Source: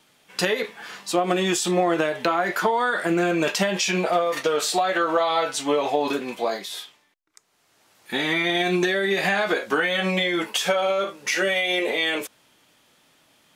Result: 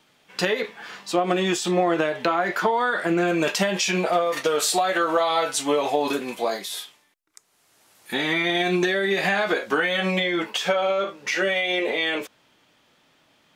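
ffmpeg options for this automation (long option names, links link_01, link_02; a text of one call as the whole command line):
ffmpeg -i in.wav -af "asetnsamples=nb_out_samples=441:pad=0,asendcmd='3.28 equalizer g 0;4.45 equalizer g 6;8.14 equalizer g -3.5;10.2 equalizer g -11.5',equalizer=frequency=11000:width_type=o:width=1.2:gain=-7.5" out.wav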